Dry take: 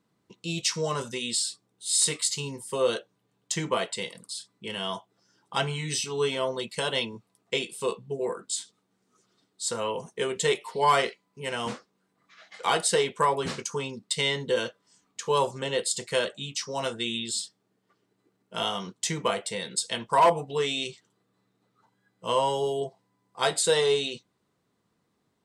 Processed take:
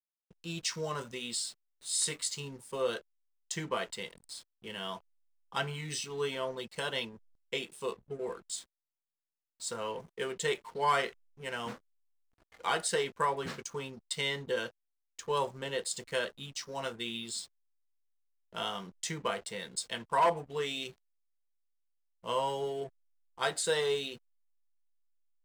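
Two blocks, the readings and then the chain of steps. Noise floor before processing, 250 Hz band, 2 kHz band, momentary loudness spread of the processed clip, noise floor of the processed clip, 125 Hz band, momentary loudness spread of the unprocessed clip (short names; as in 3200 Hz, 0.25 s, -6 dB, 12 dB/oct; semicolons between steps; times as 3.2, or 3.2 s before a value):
-75 dBFS, -7.5 dB, -5.0 dB, 13 LU, under -85 dBFS, -7.5 dB, 13 LU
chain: dynamic EQ 1600 Hz, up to +5 dB, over -44 dBFS, Q 2; backlash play -39.5 dBFS; gain -7.5 dB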